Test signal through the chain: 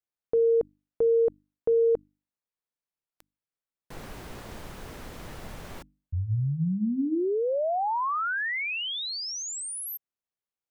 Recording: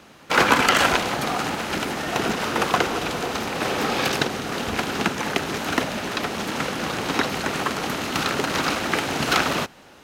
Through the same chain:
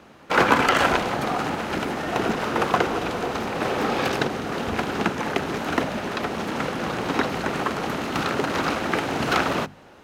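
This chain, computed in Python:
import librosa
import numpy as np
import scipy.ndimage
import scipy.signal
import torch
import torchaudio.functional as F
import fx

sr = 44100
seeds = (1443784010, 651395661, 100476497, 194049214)

y = fx.high_shelf(x, sr, hz=2400.0, db=-10.0)
y = fx.hum_notches(y, sr, base_hz=50, count=6)
y = y * librosa.db_to_amplitude(1.5)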